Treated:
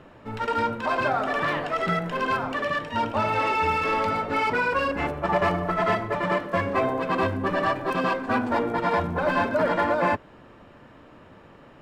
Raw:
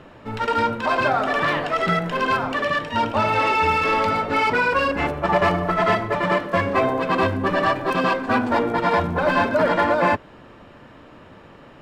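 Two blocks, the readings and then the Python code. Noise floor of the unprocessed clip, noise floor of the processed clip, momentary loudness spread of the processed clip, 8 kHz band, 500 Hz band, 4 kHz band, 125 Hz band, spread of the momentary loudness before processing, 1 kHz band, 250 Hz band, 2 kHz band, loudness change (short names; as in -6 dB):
-46 dBFS, -50 dBFS, 4 LU, n/a, -4.0 dB, -6.0 dB, -4.0 dB, 4 LU, -4.0 dB, -4.0 dB, -5.0 dB, -4.5 dB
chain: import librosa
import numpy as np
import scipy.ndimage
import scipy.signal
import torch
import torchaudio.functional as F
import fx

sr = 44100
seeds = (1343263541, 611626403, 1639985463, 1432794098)

y = fx.peak_eq(x, sr, hz=4000.0, db=-2.5, octaves=1.5)
y = y * 10.0 ** (-4.0 / 20.0)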